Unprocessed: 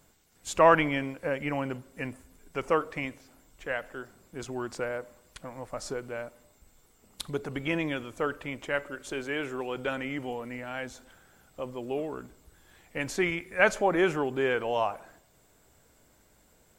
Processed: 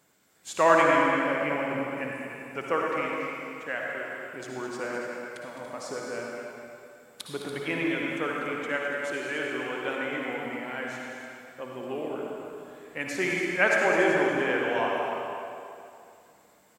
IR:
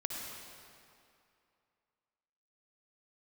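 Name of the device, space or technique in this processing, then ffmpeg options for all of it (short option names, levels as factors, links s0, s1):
stadium PA: -filter_complex "[0:a]highpass=160,equalizer=f=1800:t=o:w=0.97:g=4,aecho=1:1:209.9|285.7:0.316|0.316[s0];[1:a]atrim=start_sample=2205[s1];[s0][s1]afir=irnorm=-1:irlink=0,volume=0.841"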